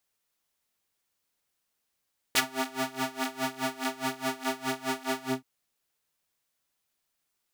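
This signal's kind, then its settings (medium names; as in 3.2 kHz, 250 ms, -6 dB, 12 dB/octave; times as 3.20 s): synth patch with tremolo C4, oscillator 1 triangle, oscillator 2 square, interval -12 st, detune 22 cents, oscillator 2 level -9 dB, sub -9 dB, noise -28 dB, filter highpass, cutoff 180 Hz, Q 0.74, filter envelope 4 oct, filter decay 0.08 s, filter sustain 45%, attack 8.8 ms, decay 0.05 s, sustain -19 dB, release 0.18 s, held 2.90 s, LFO 4.8 Hz, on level 21 dB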